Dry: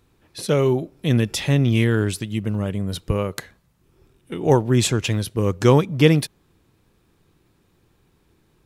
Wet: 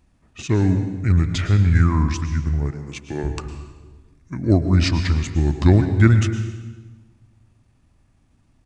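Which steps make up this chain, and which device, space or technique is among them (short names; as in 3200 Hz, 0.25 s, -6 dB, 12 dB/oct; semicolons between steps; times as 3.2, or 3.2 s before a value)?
monster voice (pitch shift -5.5 st; formant shift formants -2 st; low shelf 170 Hz +6.5 dB; reverb RT60 1.3 s, pre-delay 0.101 s, DRR 8.5 dB); 2.71–3.24 HPF 220 Hz 12 dB/oct; gain -2.5 dB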